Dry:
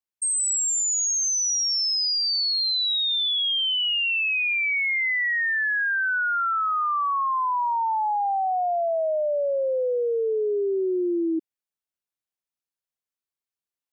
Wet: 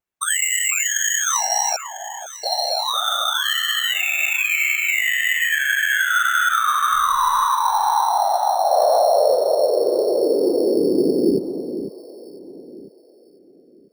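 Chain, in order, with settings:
0:01.76–0:02.44: Butterworth low-pass 1,900 Hz 48 dB per octave
pitch vibrato 1.9 Hz 67 cents
random phases in short frames
in parallel at −0.5 dB: decimation without filtering 9×
0:06.90–0:07.44: on the sum: background noise brown −47 dBFS
on a send: delay that swaps between a low-pass and a high-pass 499 ms, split 1,500 Hz, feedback 51%, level −9 dB
0:08.71–0:09.35: on the sum: envelope flattener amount 100%

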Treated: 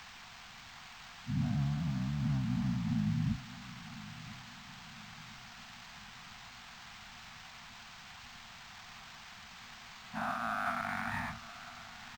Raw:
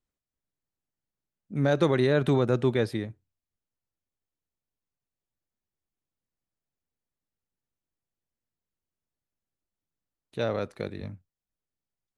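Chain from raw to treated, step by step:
every bin's largest magnitude spread in time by 480 ms
band-pass filter sweep 290 Hz → 1,500 Hz, 0:08.55–0:10.70
high-shelf EQ 2,100 Hz −3.5 dB
reversed playback
downward compressor 6 to 1, threshold −42 dBFS, peak gain reduction 20.5 dB
reversed playback
brickwall limiter −39 dBFS, peak gain reduction 8 dB
bit-depth reduction 10 bits, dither triangular
pitch-shifted copies added −12 semitones −3 dB
Chebyshev band-stop filter 240–700 Hz, order 4
high-frequency loss of the air 87 metres
repeating echo 1,002 ms, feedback 42%, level −17 dB
linearly interpolated sample-rate reduction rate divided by 4×
level +15.5 dB

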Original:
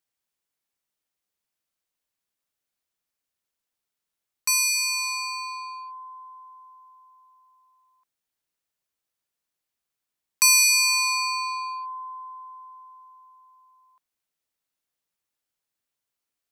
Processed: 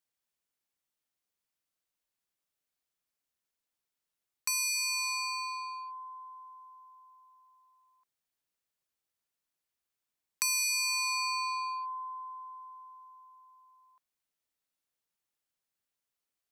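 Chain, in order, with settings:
downward compressor 4 to 1, threshold −27 dBFS, peak gain reduction 10.5 dB
level −3.5 dB

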